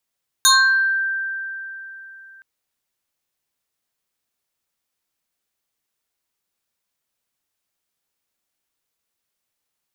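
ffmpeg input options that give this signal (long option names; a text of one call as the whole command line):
ffmpeg -f lavfi -i "aevalsrc='0.355*pow(10,-3*t/3.47)*sin(2*PI*1570*t+3.7*pow(10,-3*t/0.62)*sin(2*PI*1.68*1570*t))':duration=1.97:sample_rate=44100" out.wav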